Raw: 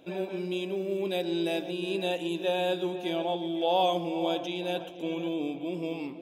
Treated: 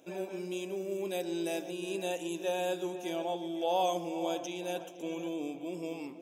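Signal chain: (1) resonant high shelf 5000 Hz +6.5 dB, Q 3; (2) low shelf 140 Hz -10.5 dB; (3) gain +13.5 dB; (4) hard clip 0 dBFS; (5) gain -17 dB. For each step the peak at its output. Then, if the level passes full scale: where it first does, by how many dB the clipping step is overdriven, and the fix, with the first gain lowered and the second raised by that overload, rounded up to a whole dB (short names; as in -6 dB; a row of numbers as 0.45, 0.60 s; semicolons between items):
-15.0, -15.5, -2.0, -2.0, -19.0 dBFS; no overload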